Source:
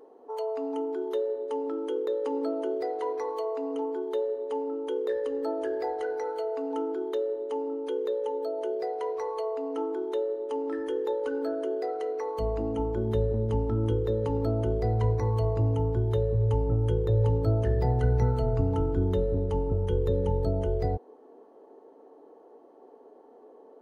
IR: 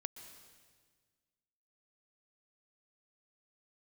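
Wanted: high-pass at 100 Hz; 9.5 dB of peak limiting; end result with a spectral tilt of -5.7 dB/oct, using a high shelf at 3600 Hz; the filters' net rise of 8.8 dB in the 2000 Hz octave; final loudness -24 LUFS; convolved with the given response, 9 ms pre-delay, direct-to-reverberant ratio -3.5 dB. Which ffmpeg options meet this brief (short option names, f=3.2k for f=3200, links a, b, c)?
-filter_complex "[0:a]highpass=100,equalizer=f=2k:t=o:g=9,highshelf=f=3.6k:g=9,alimiter=level_in=0.5dB:limit=-24dB:level=0:latency=1,volume=-0.5dB,asplit=2[a][b];[1:a]atrim=start_sample=2205,adelay=9[c];[b][c]afir=irnorm=-1:irlink=0,volume=6.5dB[d];[a][d]amix=inputs=2:normalize=0,volume=1.5dB"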